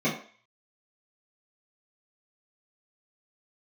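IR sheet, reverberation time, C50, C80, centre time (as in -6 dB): 0.45 s, 7.5 dB, 11.0 dB, 27 ms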